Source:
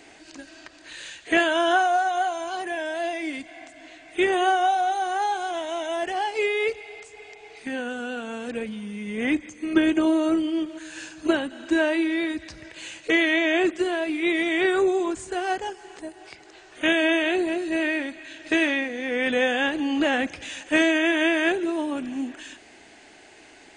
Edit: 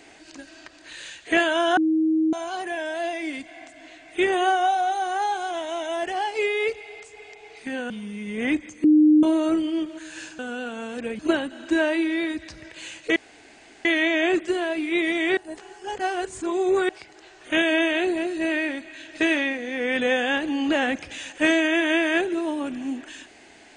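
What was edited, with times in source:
1.77–2.33 bleep 317 Hz -17.5 dBFS
7.9–8.7 move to 11.19
9.64–10.03 bleep 305 Hz -11.5 dBFS
13.16 insert room tone 0.69 s
14.68–16.2 reverse

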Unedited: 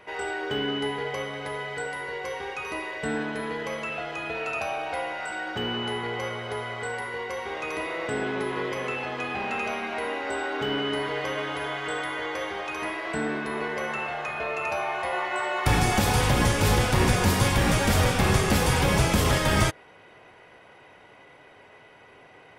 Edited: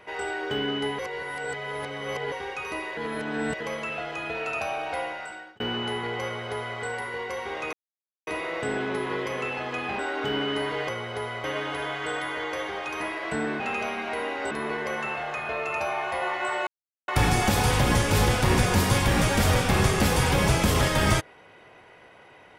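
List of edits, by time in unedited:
0.99–2.32 reverse
2.97–3.6 reverse
5.03–5.6 fade out
6.24–6.79 copy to 11.26
7.73 insert silence 0.54 s
9.45–10.36 move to 13.42
15.58 insert silence 0.41 s

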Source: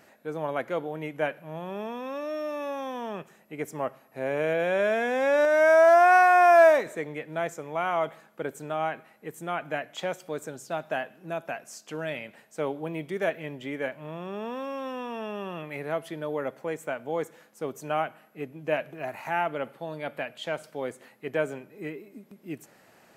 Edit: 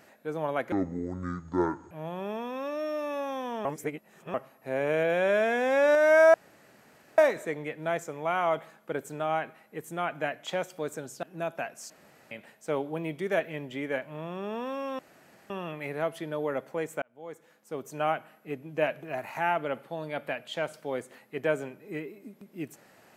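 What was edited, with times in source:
0.72–1.41 speed 58%
3.15–3.84 reverse
5.84–6.68 room tone
10.73–11.13 cut
11.8–12.21 room tone
14.89–15.4 room tone
16.92–17.99 fade in

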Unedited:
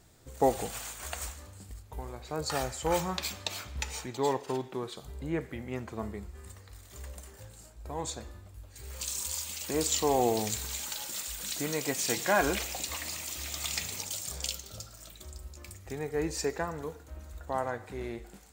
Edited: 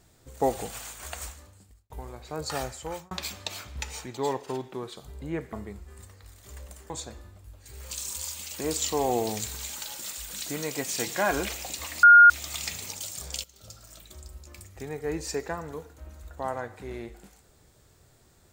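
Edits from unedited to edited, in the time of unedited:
1.26–1.9 fade out
2.64–3.11 fade out
5.53–6 cut
7.37–8 cut
13.13–13.4 bleep 1420 Hz -9 dBFS
14.54–14.94 fade in, from -19 dB

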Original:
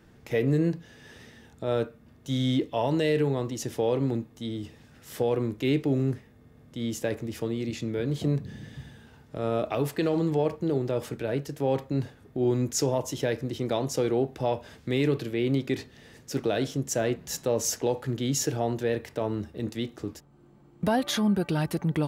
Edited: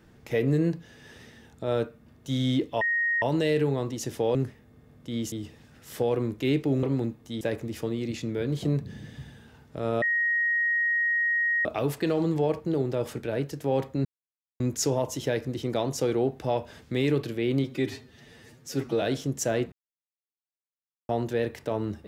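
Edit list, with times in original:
2.81 add tone 1870 Hz -22.5 dBFS 0.41 s
3.94–4.52 swap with 6.03–7
9.61 add tone 1880 Hz -22 dBFS 1.63 s
12.01–12.56 mute
15.6–16.52 stretch 1.5×
17.22–18.59 mute

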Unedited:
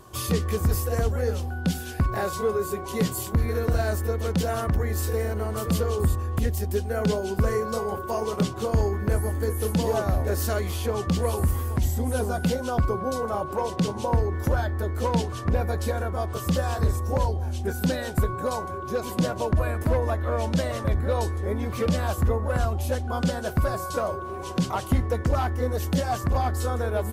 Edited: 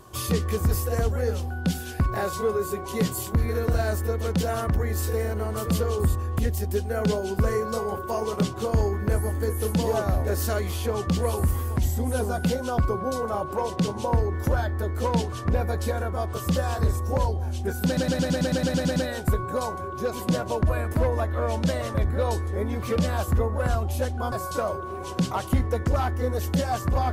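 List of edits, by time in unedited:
17.86 stutter 0.11 s, 11 plays
23.22–23.71 cut

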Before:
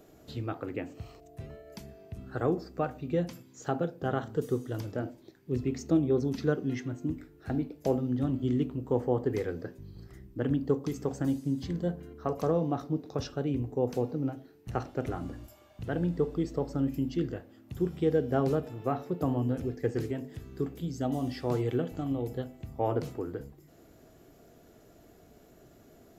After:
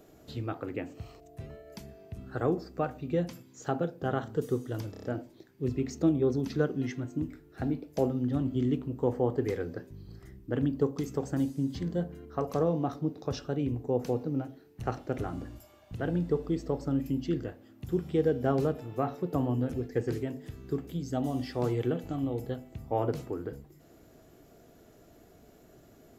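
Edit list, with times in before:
4.91 stutter 0.03 s, 5 plays

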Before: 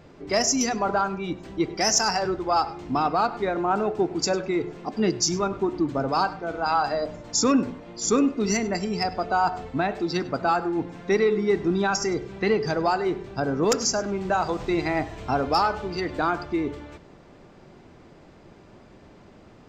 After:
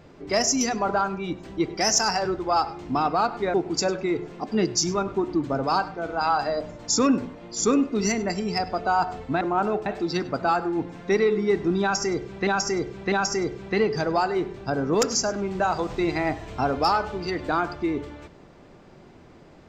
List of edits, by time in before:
3.54–3.99 move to 9.86
11.82–12.47 loop, 3 plays

